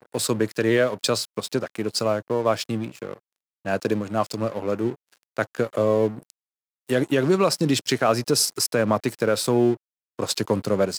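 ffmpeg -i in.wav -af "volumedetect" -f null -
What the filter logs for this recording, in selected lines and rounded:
mean_volume: -24.0 dB
max_volume: -6.8 dB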